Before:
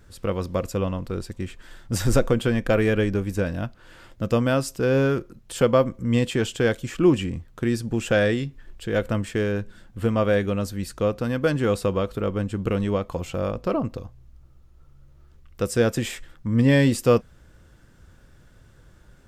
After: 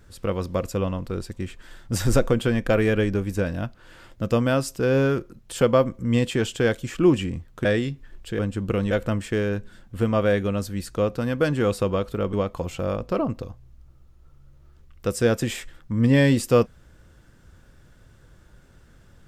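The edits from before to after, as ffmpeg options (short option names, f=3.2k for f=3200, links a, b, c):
-filter_complex "[0:a]asplit=5[a][b][c][d][e];[a]atrim=end=7.652[f];[b]atrim=start=8.198:end=8.942[g];[c]atrim=start=12.358:end=12.882[h];[d]atrim=start=8.938:end=12.362[i];[e]atrim=start=12.878[j];[f][g]acrossfade=d=0.004:c1=hsin:c2=hsin[k];[k][h]acrossfade=d=0.004:c1=hsin:c2=hsin[l];[l][i]acrossfade=d=0.004:c1=hsin:c2=hsin[m];[m][j]acrossfade=d=0.004:c1=hsin:c2=hsin"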